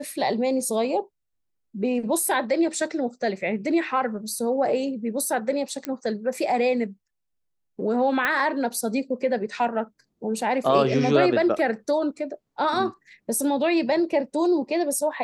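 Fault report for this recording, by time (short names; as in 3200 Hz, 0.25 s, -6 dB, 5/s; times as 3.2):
5.85 pop -14 dBFS
8.25 pop -10 dBFS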